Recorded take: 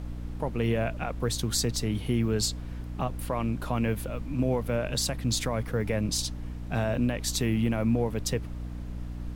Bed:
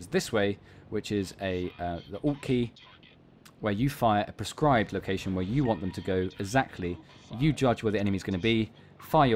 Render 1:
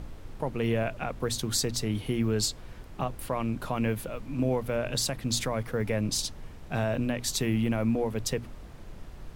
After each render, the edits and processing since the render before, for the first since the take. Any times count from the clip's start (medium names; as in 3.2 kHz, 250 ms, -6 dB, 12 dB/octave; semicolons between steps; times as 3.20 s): hum notches 60/120/180/240/300 Hz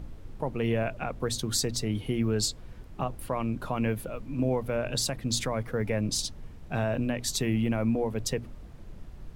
noise reduction 6 dB, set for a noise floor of -45 dBFS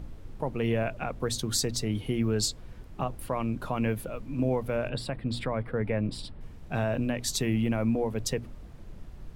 4.89–6.41 s: boxcar filter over 7 samples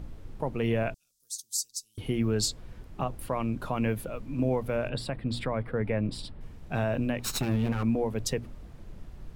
0.94–1.98 s: inverse Chebyshev high-pass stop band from 2.2 kHz, stop band 50 dB; 7.19–7.83 s: comb filter that takes the minimum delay 0.74 ms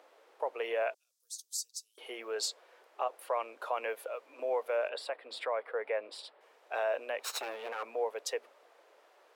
steep high-pass 470 Hz 36 dB/octave; treble shelf 3.9 kHz -8 dB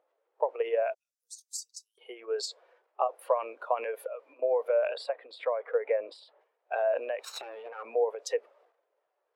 transient shaper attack +7 dB, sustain +11 dB; spectral contrast expander 1.5:1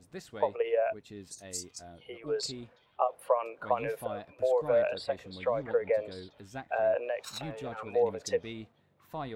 add bed -16.5 dB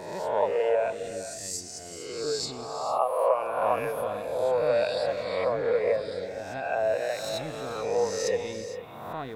reverse spectral sustain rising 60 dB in 1.23 s; gated-style reverb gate 490 ms rising, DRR 9.5 dB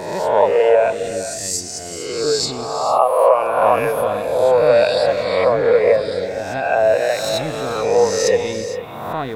trim +11.5 dB; peak limiter -2 dBFS, peak gain reduction 2 dB